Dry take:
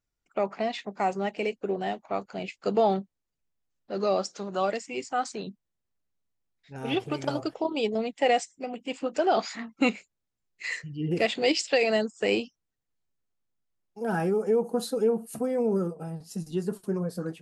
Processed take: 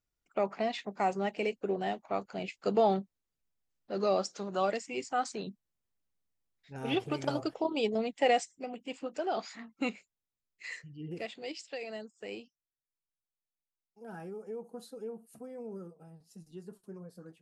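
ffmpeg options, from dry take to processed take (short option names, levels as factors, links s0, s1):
-af "volume=0.708,afade=t=out:st=8.29:d=0.9:silence=0.473151,afade=t=out:st=10.8:d=0.57:silence=0.421697"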